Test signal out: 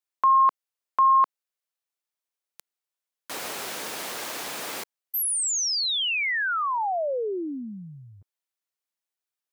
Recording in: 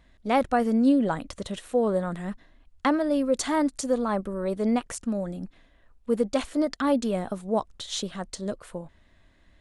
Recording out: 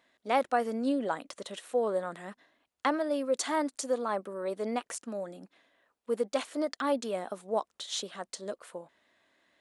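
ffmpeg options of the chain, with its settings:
ffmpeg -i in.wav -af "highpass=380,volume=-3dB" out.wav

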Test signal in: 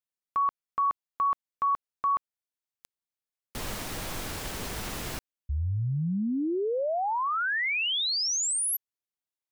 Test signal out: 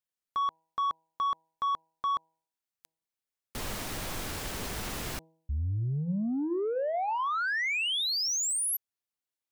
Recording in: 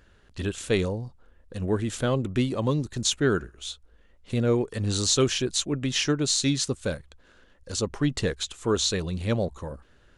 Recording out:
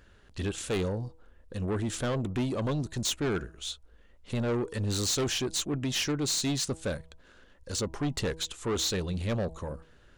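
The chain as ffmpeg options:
ffmpeg -i in.wav -af "asoftclip=type=tanh:threshold=-25dB,bandreject=frequency=161.4:width_type=h:width=4,bandreject=frequency=322.8:width_type=h:width=4,bandreject=frequency=484.2:width_type=h:width=4,bandreject=frequency=645.6:width_type=h:width=4,bandreject=frequency=807:width_type=h:width=4,bandreject=frequency=968.4:width_type=h:width=4" out.wav

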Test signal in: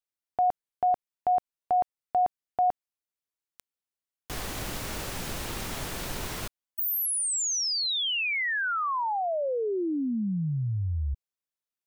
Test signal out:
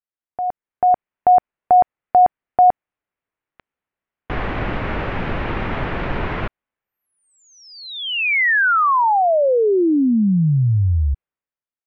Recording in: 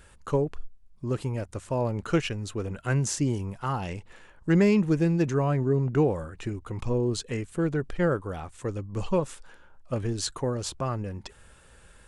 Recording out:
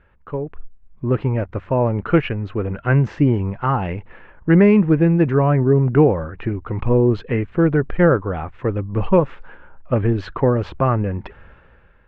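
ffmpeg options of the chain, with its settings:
ffmpeg -i in.wav -af "lowpass=frequency=2400:width=0.5412,lowpass=frequency=2400:width=1.3066,dynaudnorm=framelen=140:gausssize=11:maxgain=15dB,volume=-2dB" out.wav

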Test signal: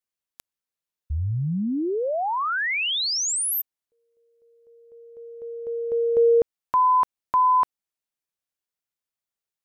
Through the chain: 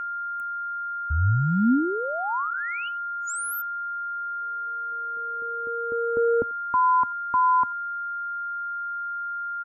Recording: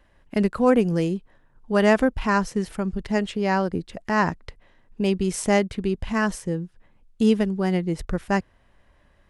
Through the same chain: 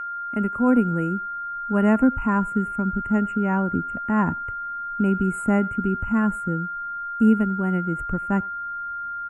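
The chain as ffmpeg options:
ffmpeg -i in.wav -filter_complex "[0:a]equalizer=frequency=100:width_type=o:width=0.67:gain=6,equalizer=frequency=250:width_type=o:width=0.67:gain=9,equalizer=frequency=1000:width_type=o:width=0.67:gain=7,equalizer=frequency=4000:width_type=o:width=0.67:gain=-11,asplit=2[link_01][link_02];[link_02]adelay=90,highpass=300,lowpass=3400,asoftclip=type=hard:threshold=-9.5dB,volume=-24dB[link_03];[link_01][link_03]amix=inputs=2:normalize=0,acrossover=split=330[link_04][link_05];[link_04]dynaudnorm=framelen=450:gausssize=3:maxgain=8dB[link_06];[link_06][link_05]amix=inputs=2:normalize=0,aeval=exprs='val(0)+0.112*sin(2*PI*1400*n/s)':channel_layout=same,afftfilt=real='re*(1-between(b*sr/4096,3000,6800))':imag='im*(1-between(b*sr/4096,3000,6800))':win_size=4096:overlap=0.75,volume=-9dB" out.wav

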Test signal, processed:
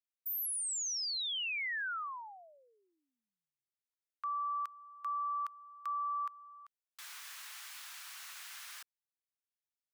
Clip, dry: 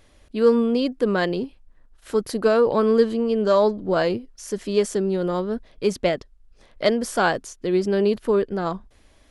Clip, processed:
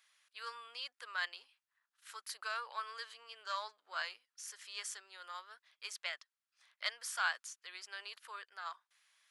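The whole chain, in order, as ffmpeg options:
ffmpeg -i in.wav -af "highpass=frequency=1200:width=0.5412,highpass=frequency=1200:width=1.3066,volume=-9dB" out.wav

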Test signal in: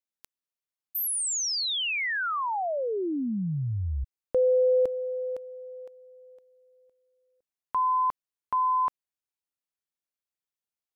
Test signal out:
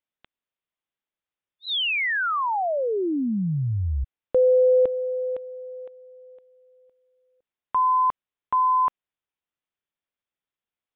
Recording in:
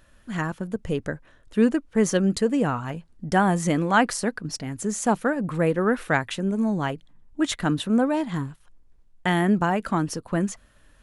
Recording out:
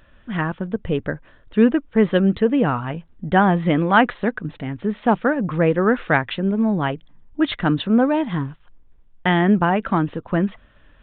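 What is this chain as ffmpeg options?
ffmpeg -i in.wav -af "aresample=8000,aresample=44100,volume=4.5dB" out.wav

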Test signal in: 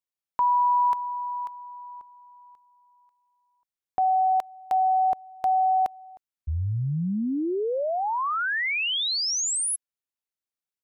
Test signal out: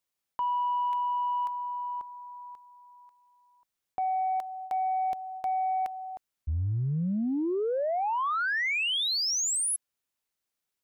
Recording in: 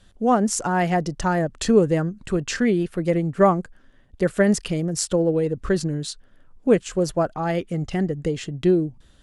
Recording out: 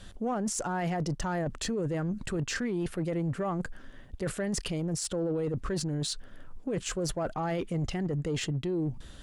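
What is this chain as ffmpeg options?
ffmpeg -i in.wav -af "alimiter=limit=-16dB:level=0:latency=1,areverse,acompressor=threshold=-32dB:ratio=16:attack=0.18:release=112:knee=6:detection=peak,areverse,asoftclip=type=tanh:threshold=-28dB,volume=7dB" out.wav

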